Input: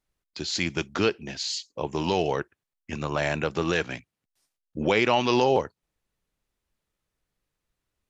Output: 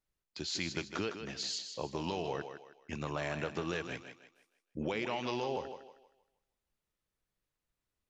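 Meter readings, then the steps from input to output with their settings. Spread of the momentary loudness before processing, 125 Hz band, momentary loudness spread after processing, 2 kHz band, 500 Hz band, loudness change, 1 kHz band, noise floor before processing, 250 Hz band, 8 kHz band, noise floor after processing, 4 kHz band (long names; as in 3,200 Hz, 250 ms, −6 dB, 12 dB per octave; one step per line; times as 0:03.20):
17 LU, −10.0 dB, 12 LU, −11.5 dB, −12.5 dB, −11.5 dB, −12.5 dB, −85 dBFS, −11.0 dB, can't be measured, below −85 dBFS, −9.0 dB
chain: downward compressor, threshold −25 dBFS, peak gain reduction 8.5 dB
on a send: feedback echo with a high-pass in the loop 157 ms, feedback 36%, high-pass 230 Hz, level −8 dB
on the sum: level −7 dB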